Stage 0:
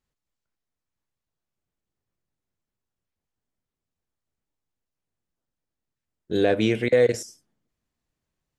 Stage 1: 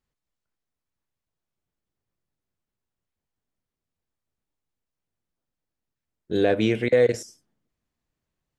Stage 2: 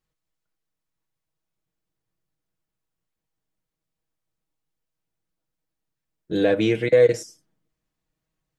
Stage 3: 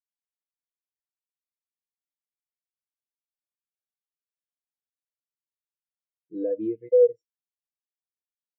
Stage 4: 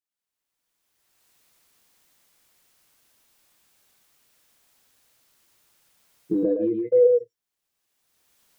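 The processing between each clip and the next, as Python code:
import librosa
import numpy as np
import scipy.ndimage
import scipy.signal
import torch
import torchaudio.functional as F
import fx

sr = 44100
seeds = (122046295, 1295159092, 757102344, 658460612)

y1 = fx.high_shelf(x, sr, hz=5200.0, db=-4.5)
y2 = y1 + 0.55 * np.pad(y1, (int(6.3 * sr / 1000.0), 0))[:len(y1)]
y3 = fx.leveller(y2, sr, passes=1)
y3 = fx.rider(y3, sr, range_db=10, speed_s=0.5)
y3 = fx.spectral_expand(y3, sr, expansion=2.5)
y3 = y3 * 10.0 ** (-2.0 / 20.0)
y4 = fx.recorder_agc(y3, sr, target_db=-18.0, rise_db_per_s=24.0, max_gain_db=30)
y4 = y4 + 10.0 ** (-3.0 / 20.0) * np.pad(y4, (int(116 * sr / 1000.0), 0))[:len(y4)]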